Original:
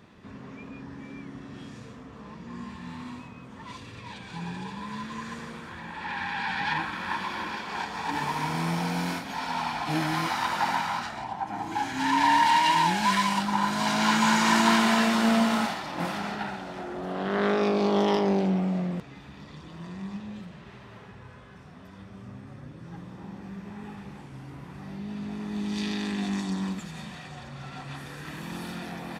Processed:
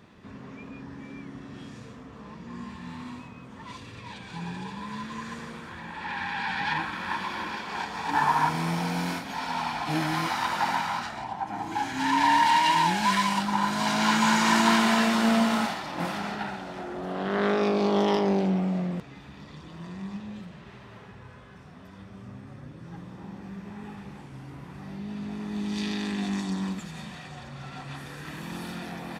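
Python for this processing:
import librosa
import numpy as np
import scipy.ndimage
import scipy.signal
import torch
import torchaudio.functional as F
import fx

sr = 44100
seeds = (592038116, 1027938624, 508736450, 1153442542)

y = fx.spec_box(x, sr, start_s=8.13, length_s=0.36, low_hz=650.0, high_hz=1800.0, gain_db=8)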